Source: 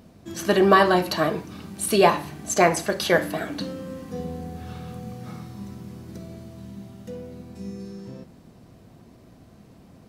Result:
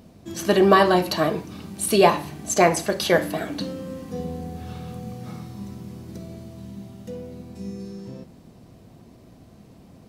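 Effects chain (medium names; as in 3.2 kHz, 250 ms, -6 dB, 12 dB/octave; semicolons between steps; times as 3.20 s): peaking EQ 1.5 kHz -3.5 dB 0.86 oct; trim +1.5 dB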